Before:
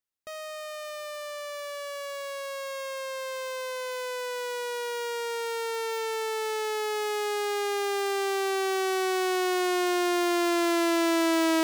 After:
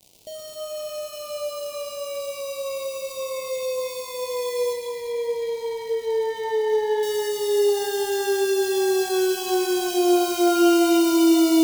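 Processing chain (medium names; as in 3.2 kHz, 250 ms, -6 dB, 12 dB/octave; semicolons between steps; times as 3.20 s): square wave that keeps the level; 4.73–7.03 s: low-pass 2.5 kHz 12 dB/octave; crackle 250 per s -35 dBFS; Butterworth band-stop 1.5 kHz, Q 0.67; pitch-shifted reverb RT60 2.5 s, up +12 st, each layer -8 dB, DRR 2.5 dB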